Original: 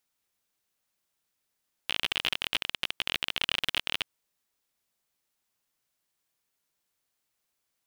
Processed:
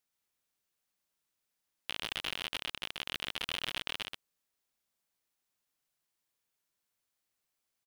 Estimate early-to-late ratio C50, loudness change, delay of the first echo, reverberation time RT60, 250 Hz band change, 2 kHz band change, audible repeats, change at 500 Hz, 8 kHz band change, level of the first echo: no reverb, -7.5 dB, 126 ms, no reverb, -4.0 dB, -7.0 dB, 1, -4.0 dB, -4.5 dB, -4.5 dB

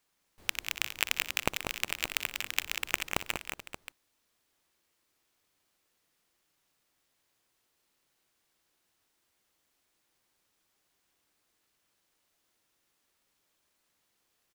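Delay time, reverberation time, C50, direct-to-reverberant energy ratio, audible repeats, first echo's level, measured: 60 ms, no reverb, no reverb, no reverb, 5, -16.5 dB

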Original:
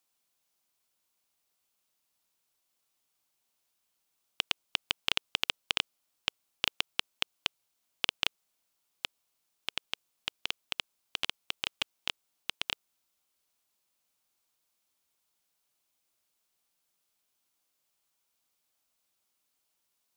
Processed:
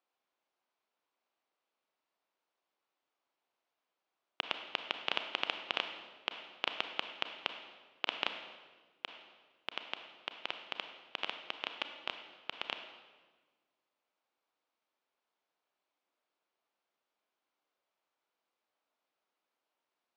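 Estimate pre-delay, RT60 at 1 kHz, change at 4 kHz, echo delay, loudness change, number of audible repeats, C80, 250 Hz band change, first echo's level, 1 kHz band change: 29 ms, 1.3 s, -6.0 dB, no echo, -5.0 dB, no echo, 9.0 dB, -1.5 dB, no echo, +1.5 dB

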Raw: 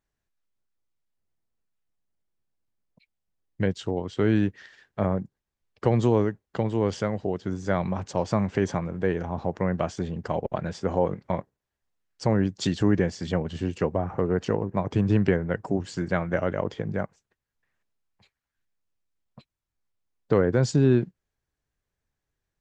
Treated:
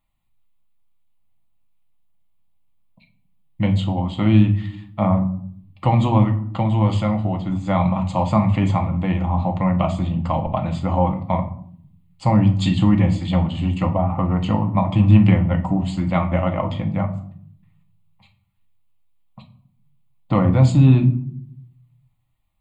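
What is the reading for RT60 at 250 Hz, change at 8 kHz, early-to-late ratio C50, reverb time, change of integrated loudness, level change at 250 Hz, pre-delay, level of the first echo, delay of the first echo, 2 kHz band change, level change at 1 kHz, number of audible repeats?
1.0 s, no reading, 12.5 dB, 0.60 s, +7.5 dB, +7.5 dB, 4 ms, no echo, no echo, +1.5 dB, +9.0 dB, no echo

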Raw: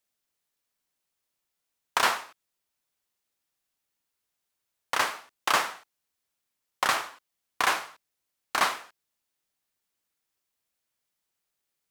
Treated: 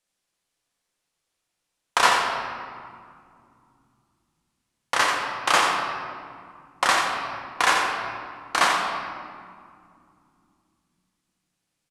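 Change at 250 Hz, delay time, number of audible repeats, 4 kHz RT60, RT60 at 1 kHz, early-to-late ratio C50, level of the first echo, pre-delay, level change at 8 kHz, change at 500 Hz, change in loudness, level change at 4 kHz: +7.5 dB, 87 ms, 1, 1.2 s, 2.2 s, 2.0 dB, -8.0 dB, 4 ms, +5.0 dB, +7.0 dB, +4.5 dB, +6.0 dB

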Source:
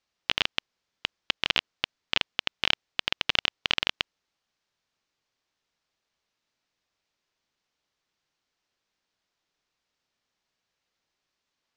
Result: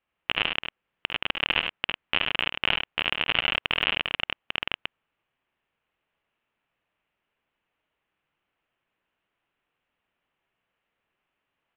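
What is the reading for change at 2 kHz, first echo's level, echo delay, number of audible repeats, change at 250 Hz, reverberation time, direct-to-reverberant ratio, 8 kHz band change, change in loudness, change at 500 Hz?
+4.0 dB, -11.5 dB, 51 ms, 3, +3.5 dB, no reverb, no reverb, under -30 dB, +1.5 dB, +4.0 dB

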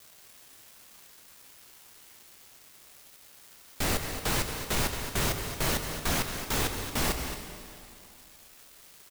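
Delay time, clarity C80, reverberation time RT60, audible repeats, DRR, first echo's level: 223 ms, 5.5 dB, 2.6 s, 1, 4.0 dB, -10.0 dB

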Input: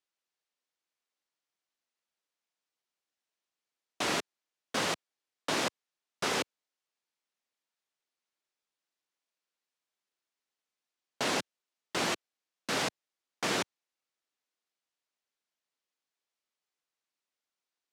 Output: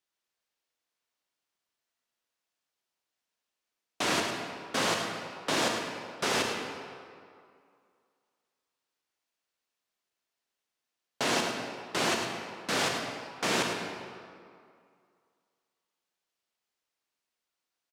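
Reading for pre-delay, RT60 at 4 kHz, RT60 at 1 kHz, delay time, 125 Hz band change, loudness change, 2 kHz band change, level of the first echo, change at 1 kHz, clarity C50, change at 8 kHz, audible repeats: 27 ms, 1.4 s, 2.3 s, 106 ms, +4.0 dB, +2.5 dB, +4.0 dB, -9.0 dB, +4.0 dB, 2.0 dB, +3.0 dB, 1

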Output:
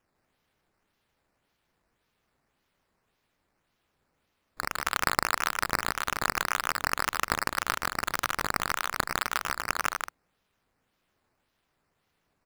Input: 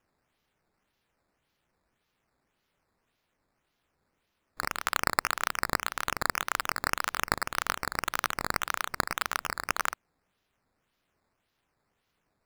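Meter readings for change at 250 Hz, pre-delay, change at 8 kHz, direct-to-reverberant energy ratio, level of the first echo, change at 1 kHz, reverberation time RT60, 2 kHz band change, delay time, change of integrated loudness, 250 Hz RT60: +2.0 dB, no reverb, +1.5 dB, no reverb, -3.5 dB, +1.5 dB, no reverb, +1.5 dB, 154 ms, +1.5 dB, no reverb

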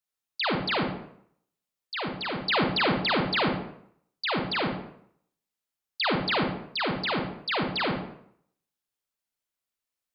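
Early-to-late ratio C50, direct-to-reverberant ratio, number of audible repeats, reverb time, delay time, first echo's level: 3.0 dB, 1.0 dB, no echo, 0.65 s, no echo, no echo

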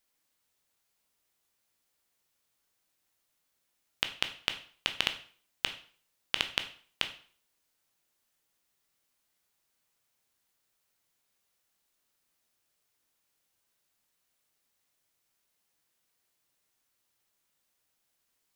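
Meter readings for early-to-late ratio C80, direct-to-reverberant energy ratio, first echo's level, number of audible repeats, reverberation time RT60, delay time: 16.0 dB, 7.5 dB, no echo, no echo, 0.45 s, no echo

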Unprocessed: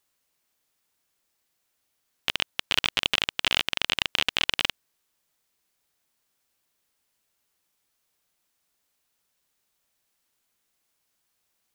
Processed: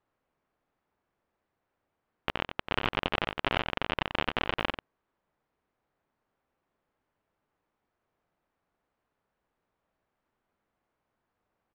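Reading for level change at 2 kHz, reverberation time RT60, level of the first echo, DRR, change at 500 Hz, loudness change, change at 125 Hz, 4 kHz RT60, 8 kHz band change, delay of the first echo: -5.0 dB, no reverb, -8.0 dB, no reverb, +5.5 dB, -6.5 dB, +5.5 dB, no reverb, under -20 dB, 91 ms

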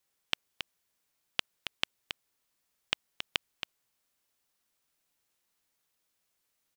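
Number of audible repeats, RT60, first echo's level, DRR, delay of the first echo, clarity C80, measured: 1, no reverb, -8.0 dB, no reverb, 274 ms, no reverb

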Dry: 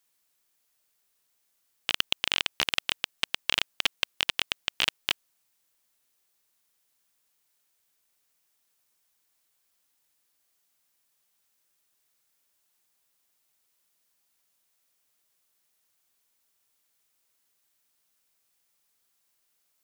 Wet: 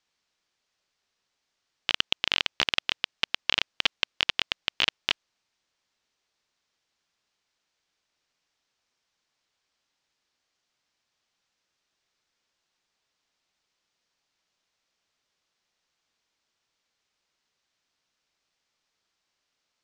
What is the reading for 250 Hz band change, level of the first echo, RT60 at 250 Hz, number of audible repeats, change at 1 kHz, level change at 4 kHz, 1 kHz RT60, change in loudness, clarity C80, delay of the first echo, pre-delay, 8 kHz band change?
+1.5 dB, no echo, no reverb, no echo, +1.5 dB, +1.5 dB, no reverb, +1.5 dB, no reverb, no echo, no reverb, -4.5 dB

